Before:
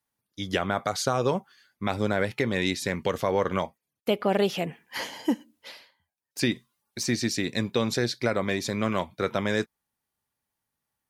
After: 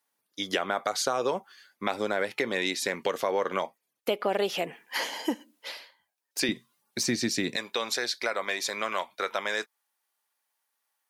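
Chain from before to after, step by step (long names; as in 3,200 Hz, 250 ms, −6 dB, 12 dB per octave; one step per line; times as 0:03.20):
high-pass filter 350 Hz 12 dB per octave, from 0:06.49 160 Hz, from 0:07.56 700 Hz
downward compressor 2 to 1, threshold −33 dBFS, peak gain reduction 7 dB
level +5 dB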